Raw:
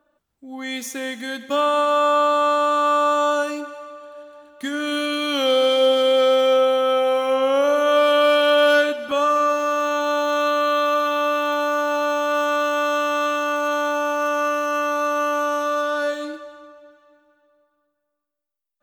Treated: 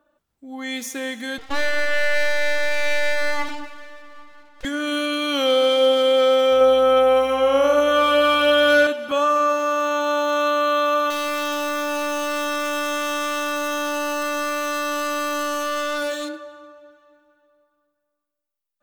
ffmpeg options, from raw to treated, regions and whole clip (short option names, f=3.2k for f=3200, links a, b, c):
-filter_complex "[0:a]asettb=1/sr,asplit=3[a][b][c];[a]atrim=end=1.384[d];[b]atrim=start=1.38:end=4.65,asetpts=PTS-STARTPTS,afade=t=in:d=0.004:c=qsin,afade=t=out:st=3.266:d=0.004:c=qsin,highpass=160,lowpass=4.7k,aeval=exprs='abs(val(0))':c=same[e];[c]atrim=start=4.646[f];[d][e]acrossfade=d=0.004:c1=hsin:c2=qsin[g];[g][f]acrossfade=d=0.004:c1=qsin:c2=hsin,asettb=1/sr,asplit=3[h][i][j];[h]atrim=end=6.514[k];[i]atrim=start=6.51:end=8.87,asetpts=PTS-STARTPTS,afade=t=in:d=0.004:c=qsin,afade=t=out:st=2.356:d=0.004:c=qsin,aeval=exprs='val(0)+0.00447*(sin(2*PI*60*n/s)+sin(2*PI*2*60*n/s)/2+sin(2*PI*3*60*n/s)/3+sin(2*PI*4*60*n/s)/4+sin(2*PI*5*60*n/s)/5)':c=same,aecho=1:1:96:0.531,atrim=end_sample=104076[l];[j]atrim=start=8.866[m];[k][l]acrossfade=d=0.004:c1=hsin:c2=qsin[n];[n][m]acrossfade=d=0.004:c1=qsin:c2=hsin,asettb=1/sr,asplit=3[o][p][q];[o]atrim=end=11.104[r];[p]atrim=start=11.1:end=16.29,asetpts=PTS-STARTPTS,afade=t=in:d=0.004:c=qsin,afade=t=out:st=5.186:d=0.004:c=qsin,highshelf=f=3.2k:g=11,asoftclip=type=hard:threshold=-22.5dB[s];[q]atrim=start=16.286[t];[r][s]acrossfade=d=0.004:c1=hsin:c2=qsin[u];[u][t]acrossfade=d=0.004:c1=qsin:c2=hsin"